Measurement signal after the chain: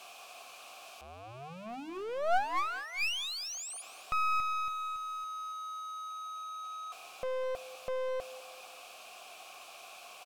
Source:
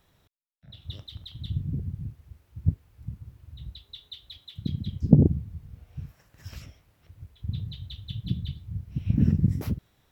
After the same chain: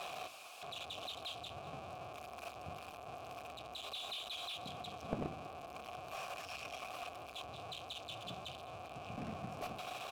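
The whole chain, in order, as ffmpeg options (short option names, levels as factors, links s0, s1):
-filter_complex "[0:a]aeval=exprs='val(0)+0.5*0.0398*sgn(val(0))':c=same,asplit=3[s0][s1][s2];[s0]bandpass=f=730:t=q:w=8,volume=1[s3];[s1]bandpass=f=1090:t=q:w=8,volume=0.501[s4];[s2]bandpass=f=2440:t=q:w=8,volume=0.355[s5];[s3][s4][s5]amix=inputs=3:normalize=0,highshelf=f=3500:g=11,bandreject=f=50:t=h:w=6,bandreject=f=100:t=h:w=6,bandreject=f=150:t=h:w=6,bandreject=f=200:t=h:w=6,bandreject=f=250:t=h:w=6,bandreject=f=300:t=h:w=6,bandreject=f=350:t=h:w=6,asplit=2[s6][s7];[s7]aecho=0:1:203|406|609|812:0.126|0.0592|0.0278|0.0131[s8];[s6][s8]amix=inputs=2:normalize=0,aeval=exprs='clip(val(0),-1,0.00841)':c=same,volume=1.41"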